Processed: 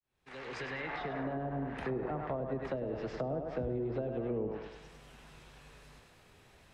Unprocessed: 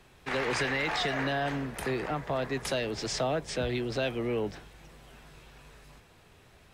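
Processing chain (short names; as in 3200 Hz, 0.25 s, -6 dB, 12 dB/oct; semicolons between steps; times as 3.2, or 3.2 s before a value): opening faded in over 1.52 s; thinning echo 0.101 s, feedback 54%, high-pass 250 Hz, level -4 dB; treble ducked by the level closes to 550 Hz, closed at -25.5 dBFS; gain -4 dB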